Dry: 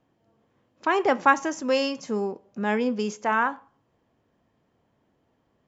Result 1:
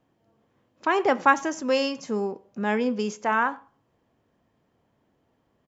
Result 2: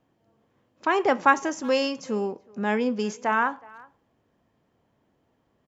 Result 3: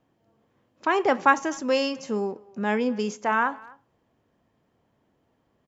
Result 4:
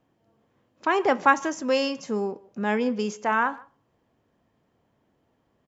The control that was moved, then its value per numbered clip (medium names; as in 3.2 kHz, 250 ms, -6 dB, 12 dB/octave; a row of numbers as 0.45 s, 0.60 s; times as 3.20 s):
speakerphone echo, time: 90 ms, 370 ms, 250 ms, 150 ms